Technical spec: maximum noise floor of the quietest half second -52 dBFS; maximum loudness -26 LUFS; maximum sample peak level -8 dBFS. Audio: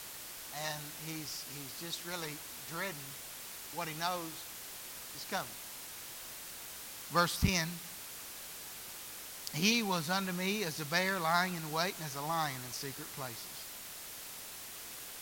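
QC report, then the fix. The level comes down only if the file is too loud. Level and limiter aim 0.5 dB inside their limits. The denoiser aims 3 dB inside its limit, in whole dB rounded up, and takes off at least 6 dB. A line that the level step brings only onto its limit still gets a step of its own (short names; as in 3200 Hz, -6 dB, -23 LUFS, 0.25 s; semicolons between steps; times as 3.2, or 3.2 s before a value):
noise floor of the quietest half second -47 dBFS: fail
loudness -37.0 LUFS: OK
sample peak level -15.0 dBFS: OK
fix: denoiser 8 dB, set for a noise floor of -47 dBFS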